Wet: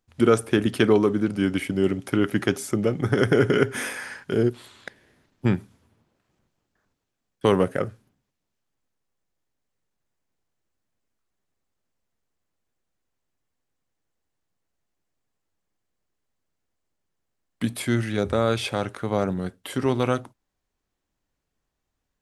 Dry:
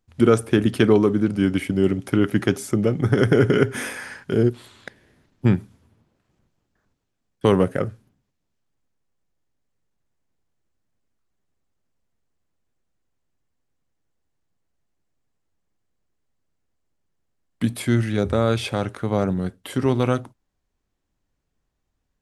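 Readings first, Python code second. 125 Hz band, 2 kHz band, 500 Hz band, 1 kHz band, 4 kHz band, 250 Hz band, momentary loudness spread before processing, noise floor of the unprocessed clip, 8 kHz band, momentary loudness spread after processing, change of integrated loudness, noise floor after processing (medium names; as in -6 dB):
-5.0 dB, 0.0 dB, -2.0 dB, -0.5 dB, 0.0 dB, -3.0 dB, 10 LU, -76 dBFS, 0.0 dB, 11 LU, -2.5 dB, -81 dBFS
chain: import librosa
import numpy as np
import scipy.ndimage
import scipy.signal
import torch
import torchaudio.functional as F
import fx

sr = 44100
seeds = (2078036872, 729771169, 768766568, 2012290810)

y = fx.low_shelf(x, sr, hz=280.0, db=-6.0)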